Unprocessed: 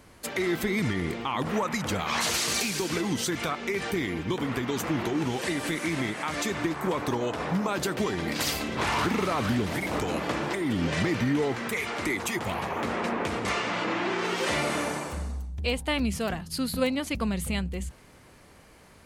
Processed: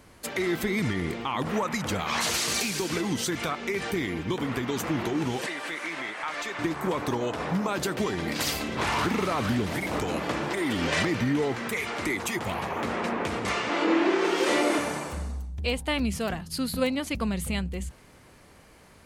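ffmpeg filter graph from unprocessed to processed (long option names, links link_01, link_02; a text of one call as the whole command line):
ffmpeg -i in.wav -filter_complex "[0:a]asettb=1/sr,asplit=3[link_01][link_02][link_03];[link_01]atrim=end=5.464[link_04];[link_02]atrim=start=5.46:end=6.59,asetpts=PTS-STARTPTS,afade=type=in:duration=0.004:curve=qsin,afade=type=out:start_time=1.126:duration=0.004:curve=qsin,highpass=frequency=780:poles=1,asplit=2[link_05][link_06];[link_06]highpass=frequency=720:poles=1,volume=9dB,asoftclip=type=tanh:threshold=-18.5dB[link_07];[link_05][link_07]amix=inputs=2:normalize=0,lowpass=frequency=1800:poles=1,volume=-6dB[link_08];[link_03]atrim=start=6.586[link_09];[link_04][link_08]acrossfade=duration=0.004:curve1=hsin:curve2=qsin[link_10];[link_10][link_09]acrossfade=duration=0.004:curve1=qsin:curve2=hsin,asettb=1/sr,asplit=3[link_11][link_12][link_13];[link_11]atrim=end=10.574[link_14];[link_12]atrim=start=10.57:end=11.05,asetpts=PTS-STARTPTS,afade=type=in:duration=0.004:curve=qsin,afade=type=out:start_time=0.476:duration=0.004:curve=qsin,acontrast=38,equalizer=frequency=140:width=0.57:gain=-10.5[link_15];[link_13]atrim=start=11.046[link_16];[link_14][link_15]acrossfade=duration=0.004:curve1=hsin:curve2=qsin[link_17];[link_17][link_16]acrossfade=duration=0.004:curve1=qsin:curve2=hsin,asettb=1/sr,asplit=3[link_18][link_19][link_20];[link_18]atrim=end=13.694[link_21];[link_19]atrim=start=13.69:end=14.79,asetpts=PTS-STARTPTS,afade=type=in:duration=0.004:curve=qsin,afade=type=out:start_time=1.096:duration=0.004:curve=qsin,highpass=frequency=320:width_type=q:width=2.5,asplit=2[link_22][link_23];[link_23]adelay=24,volume=-6dB[link_24];[link_22][link_24]amix=inputs=2:normalize=0,atrim=end_sample=48510[link_25];[link_20]atrim=start=14.786[link_26];[link_21][link_25]acrossfade=duration=0.004:curve1=hsin:curve2=qsin[link_27];[link_27][link_26]acrossfade=duration=0.004:curve1=qsin:curve2=hsin" out.wav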